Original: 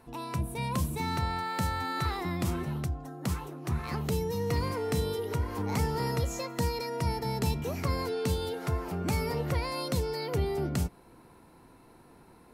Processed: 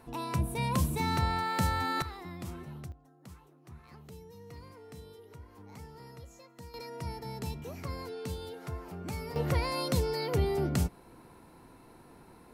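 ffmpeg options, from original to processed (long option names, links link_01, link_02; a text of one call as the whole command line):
ffmpeg -i in.wav -af "asetnsamples=nb_out_samples=441:pad=0,asendcmd='2.02 volume volume -10.5dB;2.92 volume volume -19dB;6.74 volume volume -8.5dB;9.36 volume volume 1dB',volume=1.5dB" out.wav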